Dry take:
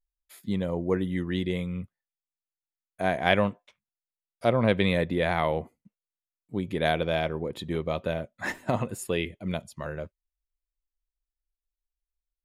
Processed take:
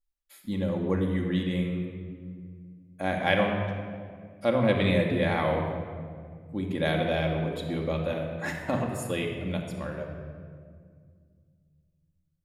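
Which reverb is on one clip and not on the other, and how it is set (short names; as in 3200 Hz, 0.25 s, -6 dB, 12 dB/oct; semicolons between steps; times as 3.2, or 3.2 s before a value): shoebox room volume 3500 m³, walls mixed, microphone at 2.3 m; gain -3.5 dB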